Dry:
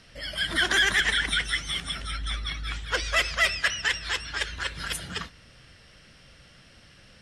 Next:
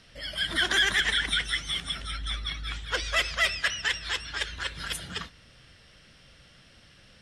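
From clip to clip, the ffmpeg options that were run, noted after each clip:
-af "equalizer=f=3.5k:t=o:w=0.36:g=3.5,volume=-2.5dB"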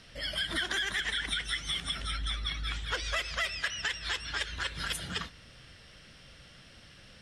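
-af "acompressor=threshold=-31dB:ratio=6,volume=1.5dB"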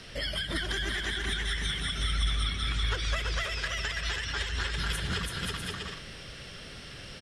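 -filter_complex "[0:a]equalizer=f=400:w=5:g=7,aecho=1:1:330|528|646.8|718.1|760.8:0.631|0.398|0.251|0.158|0.1,acrossover=split=200[a][b];[b]acompressor=threshold=-40dB:ratio=4[c];[a][c]amix=inputs=2:normalize=0,volume=7.5dB"

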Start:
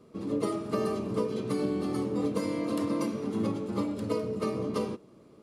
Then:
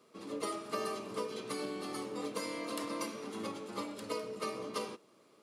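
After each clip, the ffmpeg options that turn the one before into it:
-af "highpass=f=1.4k:p=1,volume=2dB"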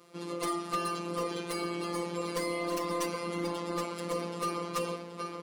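-filter_complex "[0:a]asplit=2[a][b];[b]adelay=776,lowpass=f=5k:p=1,volume=-6dB,asplit=2[c][d];[d]adelay=776,lowpass=f=5k:p=1,volume=0.42,asplit=2[e][f];[f]adelay=776,lowpass=f=5k:p=1,volume=0.42,asplit=2[g][h];[h]adelay=776,lowpass=f=5k:p=1,volume=0.42,asplit=2[i][j];[j]adelay=776,lowpass=f=5k:p=1,volume=0.42[k];[a][c][e][g][i][k]amix=inputs=6:normalize=0,afftfilt=real='hypot(re,im)*cos(PI*b)':imag='0':win_size=1024:overlap=0.75,aeval=exprs='0.112*sin(PI/2*2.82*val(0)/0.112)':c=same,volume=-2.5dB"

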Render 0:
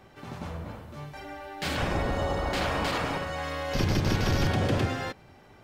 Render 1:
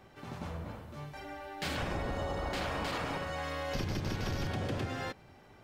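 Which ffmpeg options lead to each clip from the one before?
-af "acompressor=threshold=-28dB:ratio=5,volume=-3.5dB"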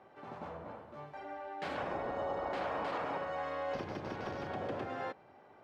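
-af "bandpass=f=720:t=q:w=0.85:csg=0,volume=2dB"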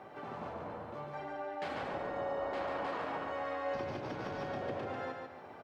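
-filter_complex "[0:a]acompressor=threshold=-55dB:ratio=2,flanger=delay=6.6:depth=5.1:regen=-61:speed=0.47:shape=sinusoidal,asplit=2[a][b];[b]aecho=0:1:144|288|432|576|720:0.596|0.22|0.0815|0.0302|0.0112[c];[a][c]amix=inputs=2:normalize=0,volume=13dB"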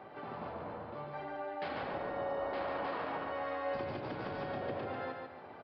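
-af "aresample=11025,aresample=44100"

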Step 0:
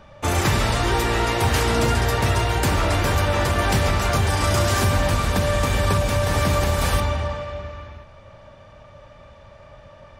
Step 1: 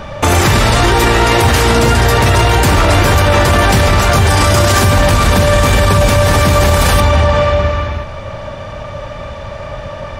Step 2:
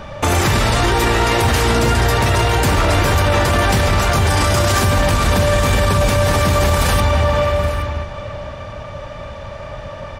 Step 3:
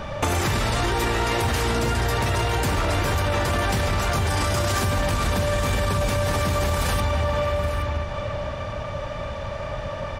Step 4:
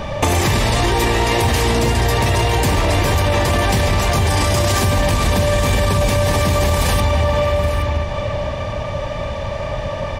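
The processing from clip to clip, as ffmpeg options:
-af "alimiter=level_in=21dB:limit=-1dB:release=50:level=0:latency=1,volume=-1dB"
-af "aecho=1:1:820:0.158,volume=-5dB"
-af "acompressor=threshold=-22dB:ratio=3"
-af "equalizer=f=1.4k:w=6.8:g=-13,volume=7dB"

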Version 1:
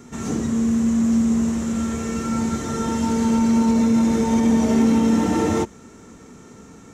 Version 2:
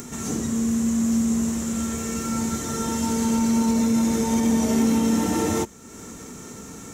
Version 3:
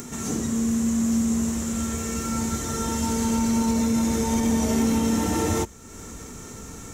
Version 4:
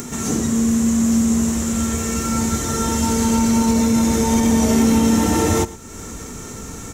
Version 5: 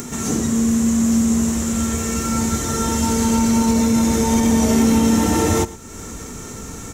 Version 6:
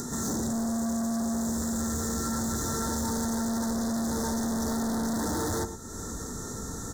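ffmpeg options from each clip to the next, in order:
-af "aemphasis=mode=production:type=50fm,acompressor=mode=upward:threshold=-27dB:ratio=2.5,volume=-3dB"
-af "asubboost=boost=3.5:cutoff=94"
-af "aecho=1:1:111:0.119,volume=6.5dB"
-af anull
-af "volume=24dB,asoftclip=hard,volume=-24dB,asuperstop=centerf=2600:order=8:qfactor=1.5,volume=-4dB"

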